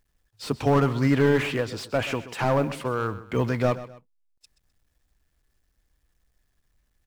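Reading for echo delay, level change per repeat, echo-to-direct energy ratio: 0.128 s, -9.5 dB, -14.5 dB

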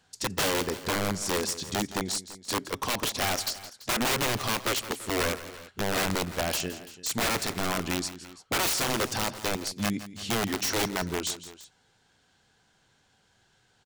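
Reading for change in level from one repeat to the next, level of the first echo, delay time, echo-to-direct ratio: -3.5 dB, -14.5 dB, 0.166 s, -13.0 dB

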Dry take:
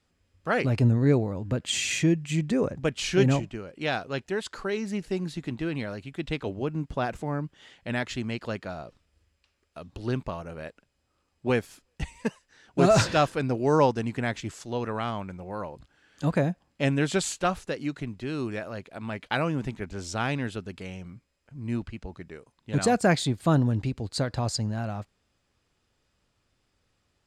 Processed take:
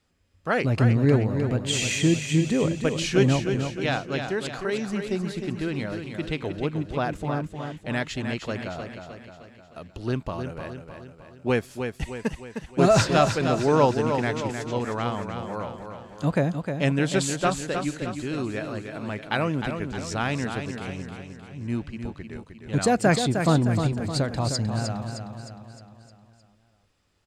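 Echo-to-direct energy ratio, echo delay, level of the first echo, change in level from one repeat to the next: -5.5 dB, 0.308 s, -7.0 dB, -5.5 dB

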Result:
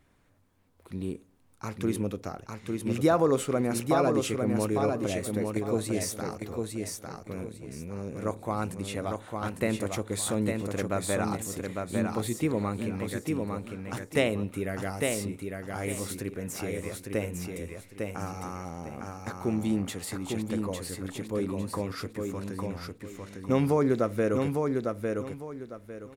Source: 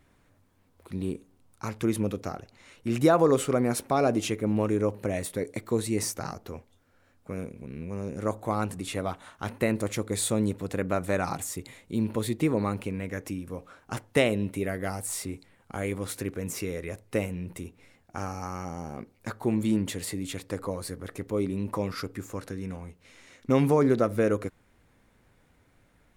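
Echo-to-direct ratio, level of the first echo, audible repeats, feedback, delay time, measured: -3.5 dB, -4.0 dB, 3, 27%, 0.853 s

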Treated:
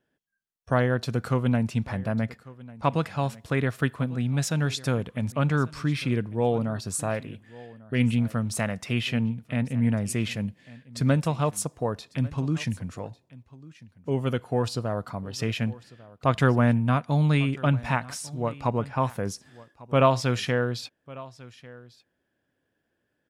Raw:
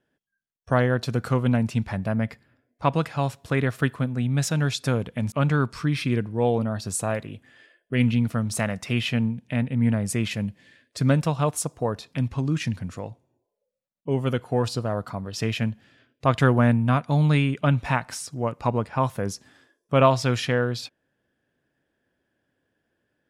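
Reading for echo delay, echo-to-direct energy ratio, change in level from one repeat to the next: 1.147 s, -20.5 dB, no steady repeat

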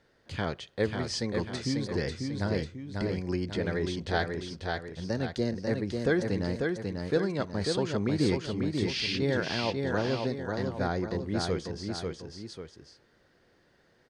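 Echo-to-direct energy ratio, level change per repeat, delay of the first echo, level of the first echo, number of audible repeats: -3.0 dB, -7.0 dB, 0.543 s, -4.0 dB, 2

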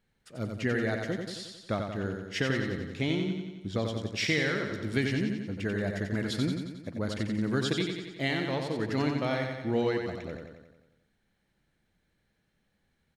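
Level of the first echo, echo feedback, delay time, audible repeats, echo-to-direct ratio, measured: -5.0 dB, 59%, 90 ms, 7, -3.0 dB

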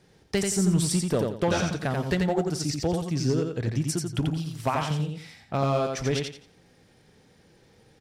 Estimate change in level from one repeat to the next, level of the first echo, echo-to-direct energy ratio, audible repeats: -11.0 dB, -4.0 dB, -3.5 dB, 3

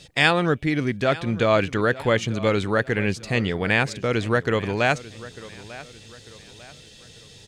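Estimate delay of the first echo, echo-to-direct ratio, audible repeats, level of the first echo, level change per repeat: 0.896 s, -17.5 dB, 3, -18.0 dB, -8.0 dB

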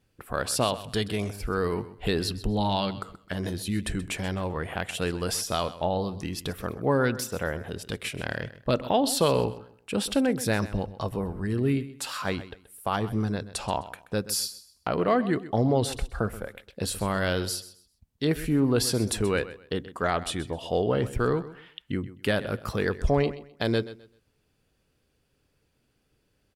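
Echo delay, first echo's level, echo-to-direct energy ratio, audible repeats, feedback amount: 0.129 s, -15.5 dB, -15.0 dB, 2, 25%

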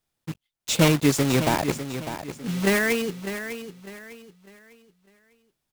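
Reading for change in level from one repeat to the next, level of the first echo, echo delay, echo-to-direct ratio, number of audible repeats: -9.5 dB, -10.5 dB, 0.601 s, -10.0 dB, 3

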